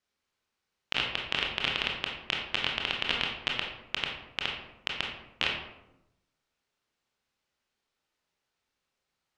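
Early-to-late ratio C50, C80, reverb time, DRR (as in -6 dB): 3.5 dB, 6.5 dB, 0.90 s, -1.0 dB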